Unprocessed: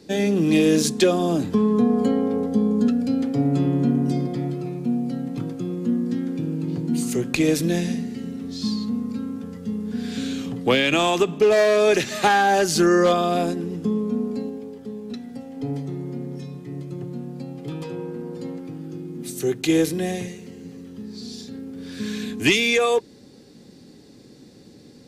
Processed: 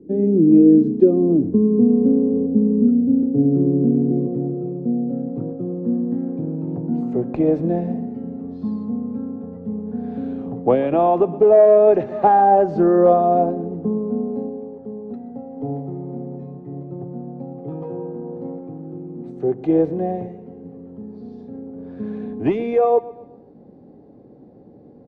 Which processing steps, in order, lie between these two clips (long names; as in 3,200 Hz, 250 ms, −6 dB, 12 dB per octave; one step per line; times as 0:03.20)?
low-pass filter sweep 340 Hz → 720 Hz, 0:03.01–0:06.50
on a send: repeating echo 125 ms, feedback 44%, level −18.5 dB